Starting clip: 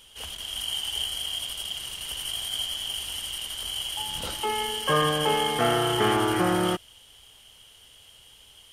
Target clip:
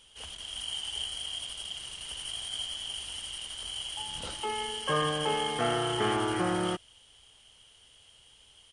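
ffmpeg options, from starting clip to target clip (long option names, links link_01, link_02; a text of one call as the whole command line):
ffmpeg -i in.wav -af "aresample=22050,aresample=44100,volume=-5.5dB" out.wav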